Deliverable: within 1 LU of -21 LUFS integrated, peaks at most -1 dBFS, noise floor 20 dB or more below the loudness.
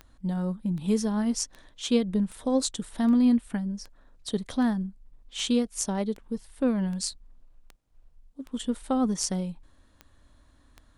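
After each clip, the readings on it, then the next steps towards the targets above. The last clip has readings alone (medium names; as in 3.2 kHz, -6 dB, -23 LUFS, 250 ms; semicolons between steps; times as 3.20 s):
clicks found 15; loudness -28.0 LUFS; peak level -10.0 dBFS; loudness target -21.0 LUFS
-> de-click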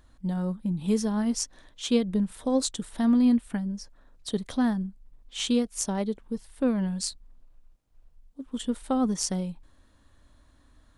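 clicks found 0; loudness -28.0 LUFS; peak level -10.0 dBFS; loudness target -21.0 LUFS
-> trim +7 dB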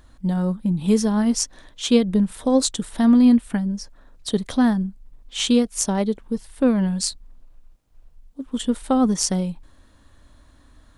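loudness -21.0 LUFS; peak level -3.0 dBFS; noise floor -54 dBFS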